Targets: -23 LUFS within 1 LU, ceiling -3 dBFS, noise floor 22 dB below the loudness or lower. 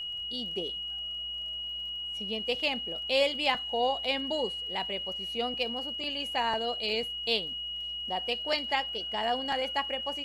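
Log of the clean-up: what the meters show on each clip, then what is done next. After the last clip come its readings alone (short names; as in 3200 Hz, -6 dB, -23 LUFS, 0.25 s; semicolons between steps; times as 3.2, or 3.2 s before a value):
ticks 33/s; steady tone 2900 Hz; tone level -34 dBFS; loudness -30.5 LUFS; peak -12.0 dBFS; loudness target -23.0 LUFS
-> de-click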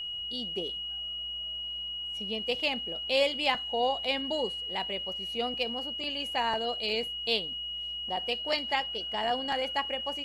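ticks 0/s; steady tone 2900 Hz; tone level -34 dBFS
-> notch 2900 Hz, Q 30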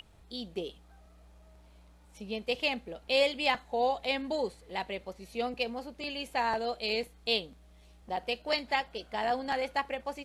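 steady tone none; loudness -32.5 LUFS; peak -13.0 dBFS; loudness target -23.0 LUFS
-> gain +9.5 dB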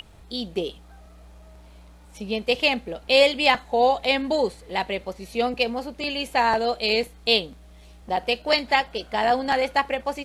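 loudness -23.0 LUFS; peak -3.5 dBFS; noise floor -48 dBFS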